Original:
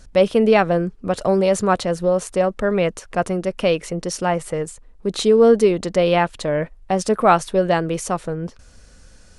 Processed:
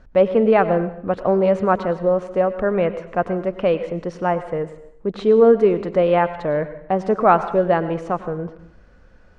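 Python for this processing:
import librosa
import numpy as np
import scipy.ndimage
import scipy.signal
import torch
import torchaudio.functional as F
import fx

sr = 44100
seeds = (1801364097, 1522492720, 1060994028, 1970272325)

y = scipy.signal.sosfilt(scipy.signal.butter(2, 1700.0, 'lowpass', fs=sr, output='sos'), x)
y = fx.low_shelf(y, sr, hz=220.0, db=-5.0)
y = fx.rev_plate(y, sr, seeds[0], rt60_s=0.67, hf_ratio=0.95, predelay_ms=85, drr_db=12.0)
y = y * 10.0 ** (1.0 / 20.0)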